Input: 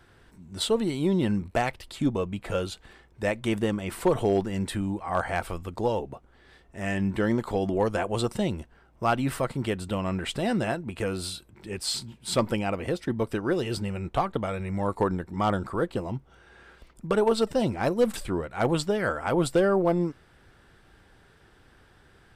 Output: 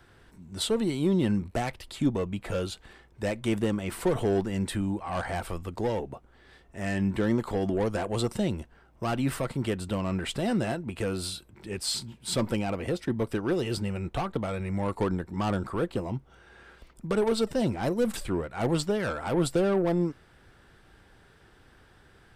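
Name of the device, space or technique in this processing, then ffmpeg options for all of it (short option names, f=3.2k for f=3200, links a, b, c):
one-band saturation: -filter_complex "[0:a]acrossover=split=400|4700[a][b][c];[b]asoftclip=type=tanh:threshold=-28dB[d];[a][d][c]amix=inputs=3:normalize=0"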